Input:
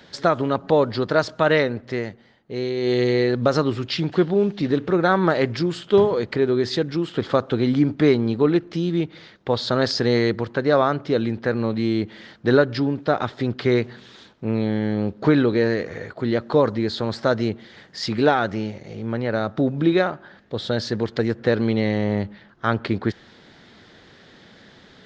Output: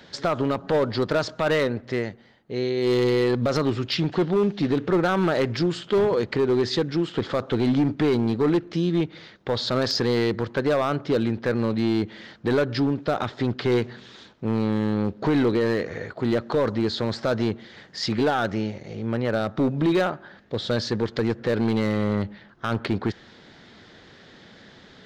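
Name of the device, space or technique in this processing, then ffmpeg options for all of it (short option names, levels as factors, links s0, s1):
limiter into clipper: -af "alimiter=limit=0.299:level=0:latency=1:release=36,asoftclip=type=hard:threshold=0.158"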